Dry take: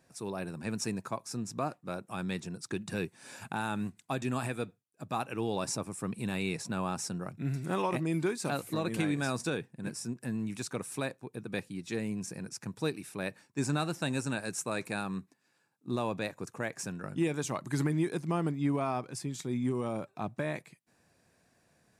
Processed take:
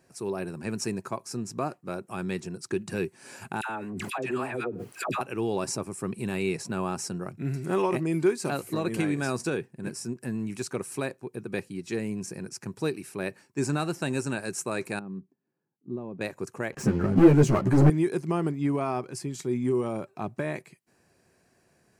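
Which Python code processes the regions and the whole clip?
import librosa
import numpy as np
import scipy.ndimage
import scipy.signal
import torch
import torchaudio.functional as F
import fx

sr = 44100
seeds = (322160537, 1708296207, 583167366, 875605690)

y = fx.chain(x, sr, fx.bass_treble(bass_db=-11, treble_db=-11),
    fx.dispersion(late='lows', ms=88.0, hz=890.0),
    fx.pre_swell(db_per_s=21.0), at=(3.61, 5.21))
y = fx.chain(y, sr, fx.bandpass_q(hz=130.0, q=0.86),
    fx.peak_eq(hz=100.0, db=-10.0, octaves=0.73), at=(14.99, 16.21))
y = fx.chain(y, sr, fx.tilt_eq(slope=-3.5),
    fx.leveller(passes=3),
    fx.ensemble(), at=(16.72, 17.9))
y = fx.peak_eq(y, sr, hz=380.0, db=8.5, octaves=0.24)
y = fx.notch(y, sr, hz=3600.0, q=8.3)
y = y * 10.0 ** (2.5 / 20.0)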